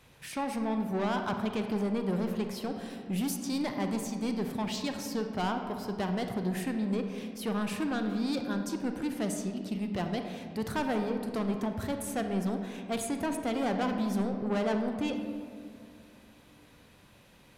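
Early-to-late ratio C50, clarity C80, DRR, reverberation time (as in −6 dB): 6.0 dB, 7.0 dB, 5.0 dB, 2.3 s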